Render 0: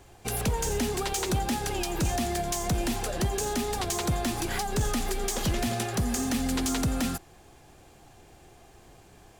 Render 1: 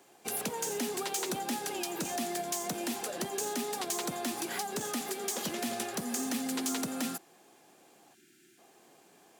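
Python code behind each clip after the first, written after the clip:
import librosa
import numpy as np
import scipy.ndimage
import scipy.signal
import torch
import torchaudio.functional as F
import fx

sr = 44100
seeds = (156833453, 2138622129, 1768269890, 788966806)

y = scipy.signal.sosfilt(scipy.signal.butter(4, 200.0, 'highpass', fs=sr, output='sos'), x)
y = fx.spec_box(y, sr, start_s=8.15, length_s=0.44, low_hz=400.0, high_hz=1300.0, gain_db=-26)
y = fx.high_shelf(y, sr, hz=8600.0, db=5.5)
y = y * 10.0 ** (-5.0 / 20.0)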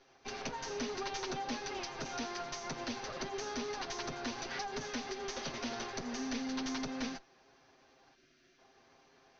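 y = fx.lower_of_two(x, sr, delay_ms=7.6)
y = scipy.signal.sosfilt(scipy.signal.cheby1(6, 3, 6200.0, 'lowpass', fs=sr, output='sos'), y)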